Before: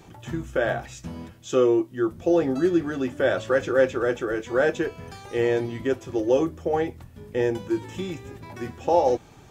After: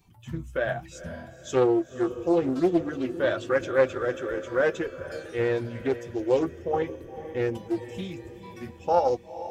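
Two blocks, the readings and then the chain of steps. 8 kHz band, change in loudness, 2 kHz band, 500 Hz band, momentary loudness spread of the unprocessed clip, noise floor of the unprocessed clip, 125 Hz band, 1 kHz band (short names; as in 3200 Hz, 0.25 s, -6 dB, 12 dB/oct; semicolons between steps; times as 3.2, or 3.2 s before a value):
n/a, -2.5 dB, -2.5 dB, -2.5 dB, 15 LU, -49 dBFS, -2.0 dB, -1.5 dB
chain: per-bin expansion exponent 1.5; diffused feedback echo 0.48 s, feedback 50%, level -13 dB; Doppler distortion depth 0.33 ms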